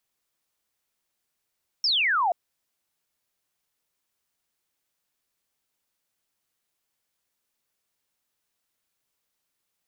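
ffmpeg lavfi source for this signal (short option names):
-f lavfi -i "aevalsrc='0.1*clip(t/0.002,0,1)*clip((0.48-t)/0.002,0,1)*sin(2*PI*5600*0.48/log(660/5600)*(exp(log(660/5600)*t/0.48)-1))':d=0.48:s=44100"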